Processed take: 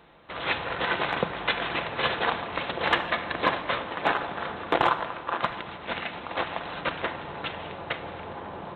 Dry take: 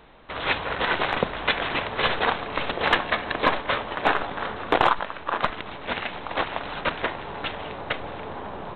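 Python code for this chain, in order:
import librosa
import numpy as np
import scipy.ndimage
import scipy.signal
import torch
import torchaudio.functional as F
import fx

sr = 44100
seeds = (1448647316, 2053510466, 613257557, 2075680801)

y = scipy.signal.sosfilt(scipy.signal.butter(2, 63.0, 'highpass', fs=sr, output='sos'), x)
y = fx.room_shoebox(y, sr, seeds[0], volume_m3=3200.0, walls='mixed', distance_m=0.79)
y = F.gain(torch.from_numpy(y), -3.5).numpy()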